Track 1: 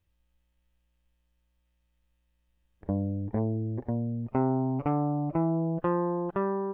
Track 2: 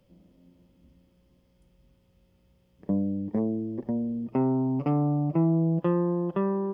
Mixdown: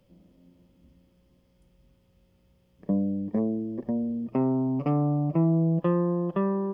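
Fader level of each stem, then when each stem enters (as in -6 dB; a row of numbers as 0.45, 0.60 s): -13.0, +0.5 dB; 0.00, 0.00 s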